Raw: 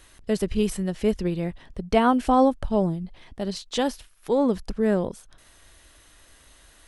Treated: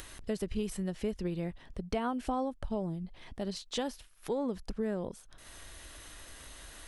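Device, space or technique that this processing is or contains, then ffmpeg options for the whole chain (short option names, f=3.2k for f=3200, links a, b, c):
upward and downward compression: -af "acompressor=mode=upward:threshold=-31dB:ratio=2.5,acompressor=threshold=-23dB:ratio=6,volume=-6.5dB"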